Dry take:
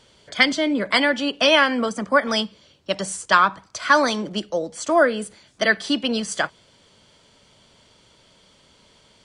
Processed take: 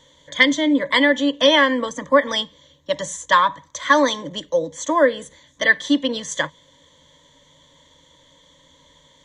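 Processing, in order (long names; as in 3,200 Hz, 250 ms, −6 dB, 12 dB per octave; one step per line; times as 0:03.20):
EQ curve with evenly spaced ripples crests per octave 1.1, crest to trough 16 dB
level −2 dB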